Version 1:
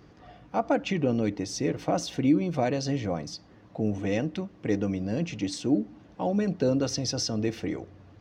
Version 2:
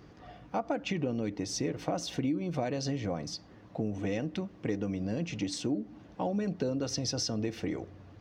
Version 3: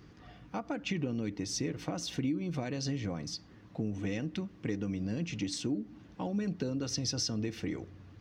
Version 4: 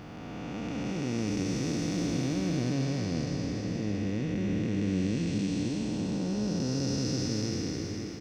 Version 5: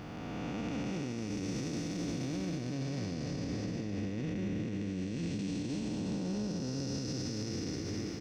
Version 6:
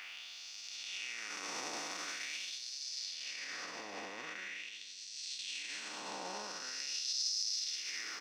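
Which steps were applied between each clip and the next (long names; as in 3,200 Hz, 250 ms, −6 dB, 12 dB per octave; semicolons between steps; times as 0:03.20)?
downward compressor 4 to 1, threshold −29 dBFS, peak gain reduction 10.5 dB
parametric band 640 Hz −8.5 dB 1.2 octaves
spectrum smeared in time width 979 ms; single-tap delay 550 ms −8.5 dB; level +8.5 dB
brickwall limiter −28.5 dBFS, peak gain reduction 10.5 dB
auto-filter high-pass sine 0.44 Hz 900–4,700 Hz; level +4 dB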